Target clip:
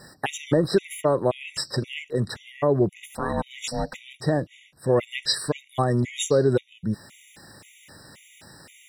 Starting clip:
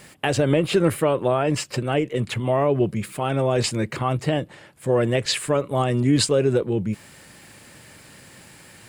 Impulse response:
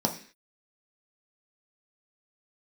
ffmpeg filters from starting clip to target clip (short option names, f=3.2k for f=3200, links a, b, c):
-filter_complex "[0:a]asettb=1/sr,asplit=3[a][b][c];[a]atrim=end=2.954[d];[b]atrim=start=2.95:end=4.14,asetpts=PTS-STARTPTS,afade=t=in:d=0.004:c=qsin,afade=t=out:st=1.186:d=0.004:c=qsin,aeval=exprs='val(0)*sin(2*PI*370*n/s)':c=same[e];[c]atrim=start=4.136[f];[d][e]acrossfade=d=0.004:c1=hsin:c2=qsin[g];[g][f]acrossfade=d=0.004:c1=qsin:c2=hsin,asplit=2[h][i];[i]asuperpass=centerf=4500:order=12:qfactor=0.98[j];[1:a]atrim=start_sample=2205,lowshelf=f=170:g=-6[k];[j][k]afir=irnorm=-1:irlink=0,volume=-11dB[l];[h][l]amix=inputs=2:normalize=0,afftfilt=real='re*gt(sin(2*PI*1.9*pts/sr)*(1-2*mod(floor(b*sr/1024/1900),2)),0)':imag='im*gt(sin(2*PI*1.9*pts/sr)*(1-2*mod(floor(b*sr/1024/1900),2)),0)':win_size=1024:overlap=0.75"